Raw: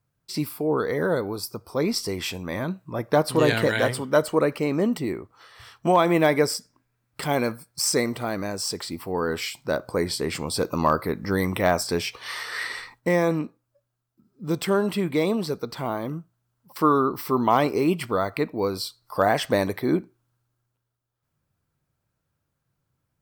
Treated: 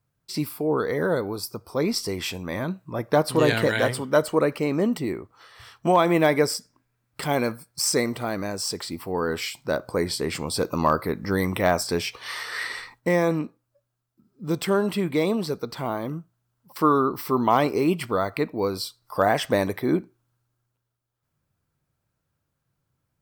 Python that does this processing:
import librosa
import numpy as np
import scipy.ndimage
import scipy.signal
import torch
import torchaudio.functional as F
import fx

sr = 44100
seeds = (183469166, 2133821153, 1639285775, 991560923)

y = fx.notch(x, sr, hz=4300.0, q=12.0, at=(18.84, 19.95))